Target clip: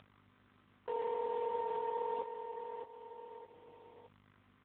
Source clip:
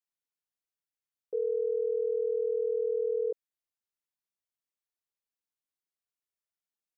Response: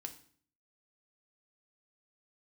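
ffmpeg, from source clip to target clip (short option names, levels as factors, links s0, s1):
-filter_complex "[0:a]aeval=exprs='if(lt(val(0),0),0.447*val(0),val(0))':c=same,atempo=1.5,alimiter=level_in=2.82:limit=0.0631:level=0:latency=1:release=19,volume=0.355,aecho=1:1:615|1230|1845:0.422|0.118|0.0331,asplit=2[s0][s1];[1:a]atrim=start_sample=2205,asetrate=48510,aresample=44100[s2];[s1][s2]afir=irnorm=-1:irlink=0,volume=0.841[s3];[s0][s3]amix=inputs=2:normalize=0,aeval=exprs='val(0)+0.00112*(sin(2*PI*50*n/s)+sin(2*PI*2*50*n/s)/2+sin(2*PI*3*50*n/s)/3+sin(2*PI*4*50*n/s)/4+sin(2*PI*5*50*n/s)/5)':c=same,acrusher=bits=5:mode=log:mix=0:aa=0.000001,acompressor=mode=upward:threshold=0.00891:ratio=2.5,lowshelf=f=500:t=q:w=1.5:g=-12.5,volume=2.66" -ar 8000 -c:a libopencore_amrnb -b:a 5150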